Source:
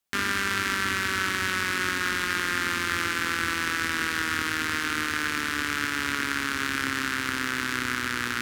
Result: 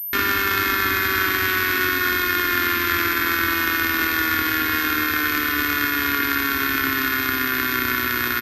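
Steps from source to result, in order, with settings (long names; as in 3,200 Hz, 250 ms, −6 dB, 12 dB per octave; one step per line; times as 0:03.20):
notch filter 2,900 Hz, Q 14
comb filter 2.8 ms, depth 70%
switching amplifier with a slow clock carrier 13,000 Hz
level +4.5 dB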